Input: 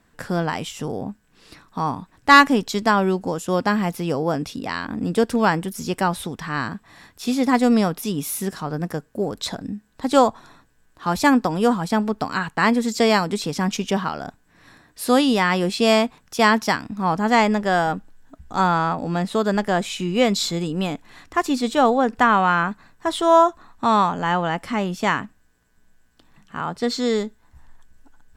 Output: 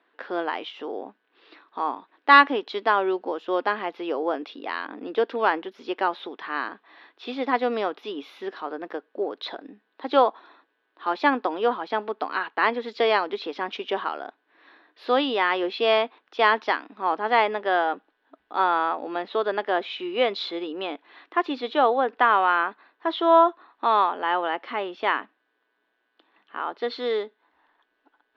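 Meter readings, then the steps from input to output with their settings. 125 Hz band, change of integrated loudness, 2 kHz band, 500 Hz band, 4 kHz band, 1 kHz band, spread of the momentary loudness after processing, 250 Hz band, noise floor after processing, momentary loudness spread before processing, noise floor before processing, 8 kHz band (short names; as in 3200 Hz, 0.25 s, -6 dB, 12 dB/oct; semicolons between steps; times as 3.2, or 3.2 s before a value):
under -25 dB, -4.0 dB, -2.5 dB, -2.5 dB, -4.5 dB, -2.0 dB, 14 LU, -11.5 dB, -74 dBFS, 12 LU, -60 dBFS, under -30 dB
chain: elliptic band-pass 330–3600 Hz, stop band 40 dB; gain -2 dB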